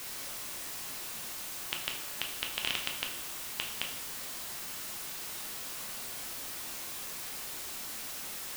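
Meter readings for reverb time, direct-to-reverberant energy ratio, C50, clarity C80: 0.70 s, 1.0 dB, 6.5 dB, 10.0 dB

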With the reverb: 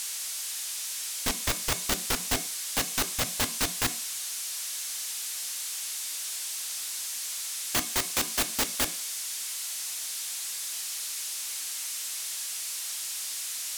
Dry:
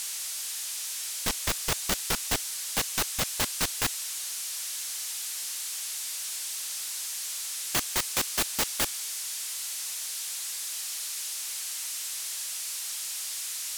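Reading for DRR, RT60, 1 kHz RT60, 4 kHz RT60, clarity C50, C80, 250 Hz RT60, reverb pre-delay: 10.0 dB, 0.45 s, 0.45 s, 0.45 s, 16.5 dB, 22.0 dB, 0.35 s, 3 ms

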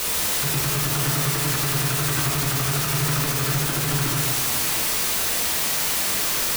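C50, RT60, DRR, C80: 1.5 dB, 1.6 s, −2.5 dB, 3.0 dB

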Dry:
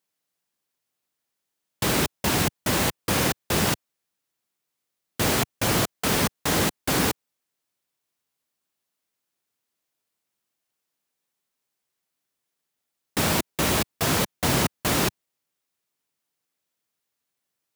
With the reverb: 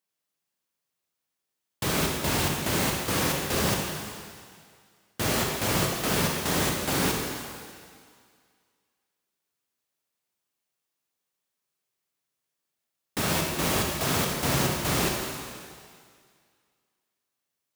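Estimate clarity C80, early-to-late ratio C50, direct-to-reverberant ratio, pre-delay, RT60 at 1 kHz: 3.0 dB, 1.5 dB, 0.0 dB, 22 ms, 2.1 s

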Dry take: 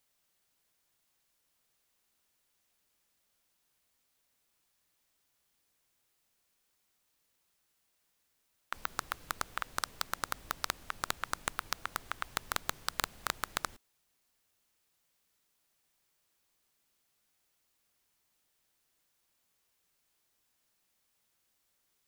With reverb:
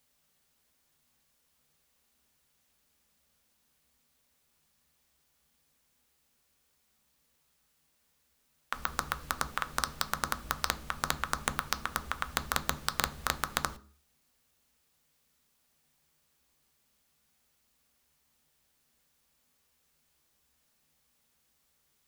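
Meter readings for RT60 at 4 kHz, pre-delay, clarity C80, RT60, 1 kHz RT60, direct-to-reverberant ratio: 0.35 s, 3 ms, 23.0 dB, 0.40 s, 0.40 s, 9.0 dB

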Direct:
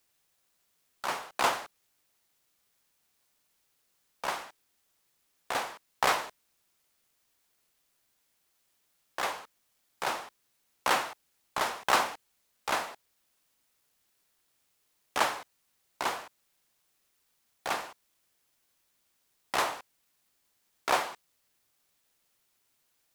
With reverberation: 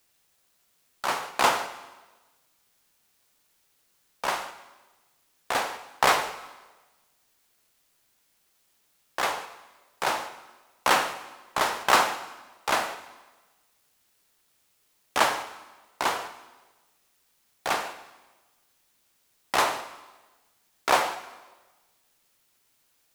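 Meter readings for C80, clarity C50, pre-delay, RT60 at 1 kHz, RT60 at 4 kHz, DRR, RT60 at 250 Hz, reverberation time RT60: 13.0 dB, 11.5 dB, 7 ms, 1.2 s, 1.1 s, 9.5 dB, 1.2 s, 1.2 s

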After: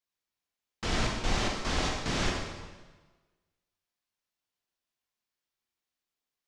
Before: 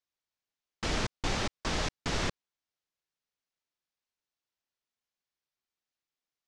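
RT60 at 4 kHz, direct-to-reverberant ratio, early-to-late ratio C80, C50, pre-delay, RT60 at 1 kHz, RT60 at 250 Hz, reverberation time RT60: 1.2 s, −1.5 dB, 4.0 dB, 2.0 dB, 15 ms, 1.3 s, 1.3 s, 1.3 s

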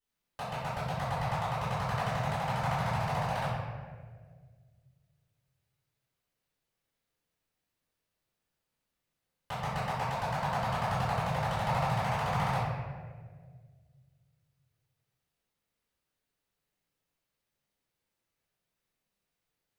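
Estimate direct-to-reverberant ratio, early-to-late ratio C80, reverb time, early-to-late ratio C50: −16.5 dB, 1.0 dB, 1.7 s, −2.0 dB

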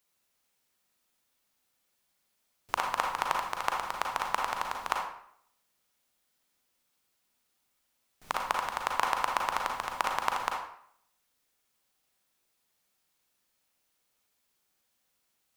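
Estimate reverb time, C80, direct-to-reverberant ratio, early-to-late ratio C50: 0.65 s, 7.5 dB, 0.5 dB, 3.5 dB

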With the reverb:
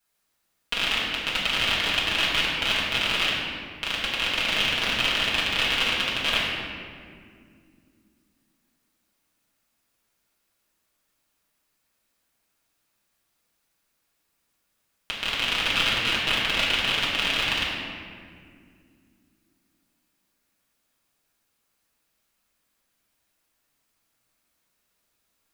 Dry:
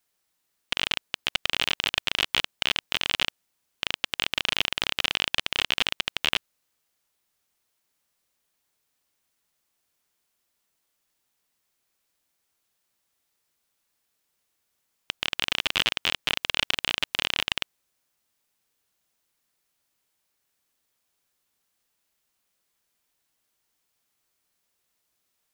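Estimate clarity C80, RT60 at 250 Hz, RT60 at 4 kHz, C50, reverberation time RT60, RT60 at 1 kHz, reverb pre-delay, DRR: 1.0 dB, 3.9 s, 1.3 s, 0.0 dB, 2.2 s, 1.8 s, 4 ms, −8.5 dB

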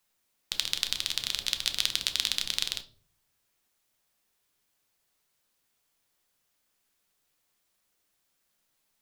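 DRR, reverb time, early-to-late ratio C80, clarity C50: 8.0 dB, 0.50 s, 20.5 dB, 16.0 dB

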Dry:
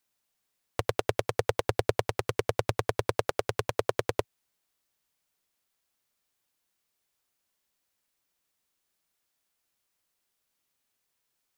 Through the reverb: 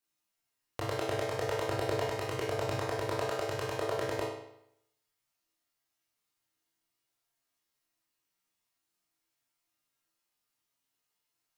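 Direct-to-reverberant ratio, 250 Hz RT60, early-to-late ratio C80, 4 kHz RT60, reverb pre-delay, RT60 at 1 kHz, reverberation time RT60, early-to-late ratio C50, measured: −6.0 dB, 0.75 s, 5.0 dB, 0.65 s, 19 ms, 0.75 s, 0.75 s, 1.0 dB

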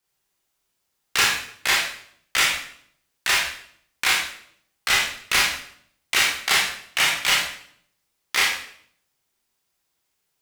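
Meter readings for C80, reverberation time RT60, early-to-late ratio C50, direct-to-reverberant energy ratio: 6.5 dB, 0.65 s, 3.0 dB, −4.0 dB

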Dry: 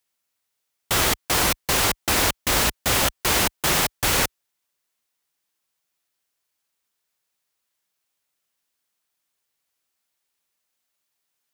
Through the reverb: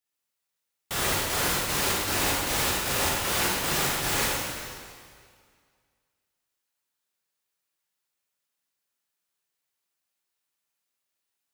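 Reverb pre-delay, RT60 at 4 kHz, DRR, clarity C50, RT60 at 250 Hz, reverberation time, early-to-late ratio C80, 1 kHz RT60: 7 ms, 1.9 s, −6.5 dB, −2.0 dB, 1.9 s, 2.0 s, −0.5 dB, 2.0 s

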